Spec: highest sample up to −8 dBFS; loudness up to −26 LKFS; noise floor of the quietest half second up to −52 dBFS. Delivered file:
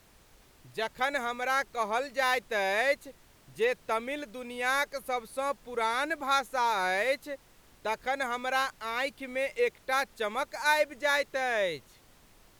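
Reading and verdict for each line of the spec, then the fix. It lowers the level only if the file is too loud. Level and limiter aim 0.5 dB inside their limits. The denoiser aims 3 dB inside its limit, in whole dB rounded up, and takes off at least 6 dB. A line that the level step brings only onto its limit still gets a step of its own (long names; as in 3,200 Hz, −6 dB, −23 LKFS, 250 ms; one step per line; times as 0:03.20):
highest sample −13.5 dBFS: in spec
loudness −30.0 LKFS: in spec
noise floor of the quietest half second −59 dBFS: in spec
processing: no processing needed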